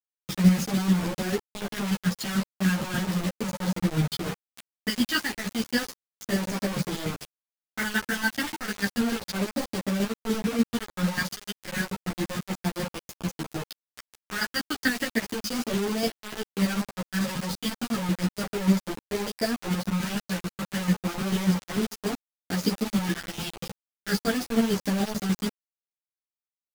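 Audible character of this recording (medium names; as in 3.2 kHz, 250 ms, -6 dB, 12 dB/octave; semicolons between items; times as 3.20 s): phasing stages 2, 0.33 Hz, lowest notch 530–1300 Hz; chopped level 6.8 Hz, depth 60%, duty 25%; a quantiser's noise floor 6-bit, dither none; a shimmering, thickened sound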